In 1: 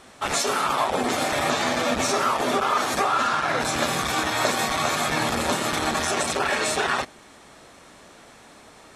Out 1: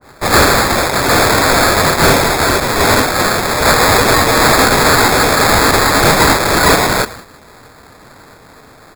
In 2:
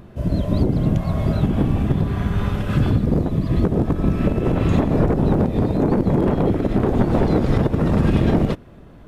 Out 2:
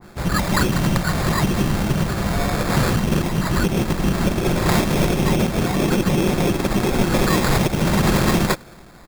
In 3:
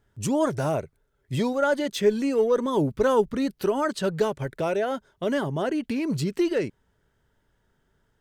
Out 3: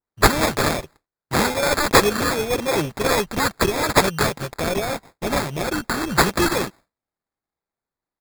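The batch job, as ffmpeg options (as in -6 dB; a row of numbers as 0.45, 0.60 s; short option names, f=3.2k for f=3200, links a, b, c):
-af "agate=range=-33dB:threshold=-40dB:ratio=3:detection=peak,aecho=1:1:5.5:0.4,aexciter=amount=15.1:drive=7.6:freq=3.3k,acrusher=samples=15:mix=1:aa=0.000001,asoftclip=type=tanh:threshold=-4.5dB,adynamicequalizer=threshold=0.0794:dfrequency=2000:dqfactor=0.7:tfrequency=2000:tqfactor=0.7:attack=5:release=100:ratio=0.375:range=1.5:mode=boostabove:tftype=highshelf,volume=-1.5dB"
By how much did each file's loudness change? +13.0, 0.0, +5.0 LU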